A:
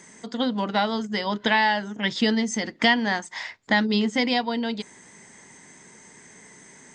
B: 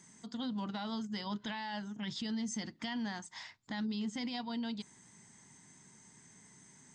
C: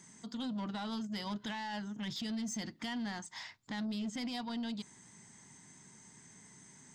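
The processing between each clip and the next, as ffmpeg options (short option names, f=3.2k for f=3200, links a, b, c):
-af "equalizer=f=125:t=o:w=1:g=6,equalizer=f=500:t=o:w=1:g=-11,equalizer=f=2k:t=o:w=1:g=-7,alimiter=limit=-22dB:level=0:latency=1:release=16,volume=-9dB"
-af "asoftclip=type=tanh:threshold=-35dB,volume=2dB"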